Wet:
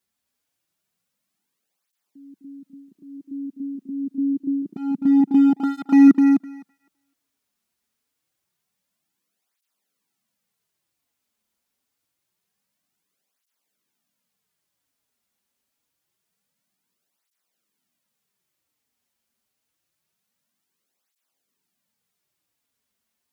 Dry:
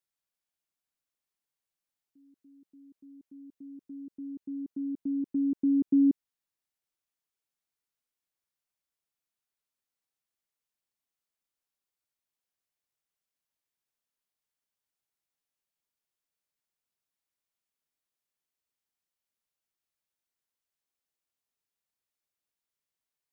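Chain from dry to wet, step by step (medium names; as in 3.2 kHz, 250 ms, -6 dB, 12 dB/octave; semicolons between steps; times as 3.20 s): peaking EQ 200 Hz +9.5 dB 0.98 oct; in parallel at -6 dB: wavefolder -26.5 dBFS; on the sum: thinning echo 255 ms, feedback 15%, high-pass 270 Hz, level -4.5 dB; cancelling through-zero flanger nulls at 0.26 Hz, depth 6.8 ms; trim +9 dB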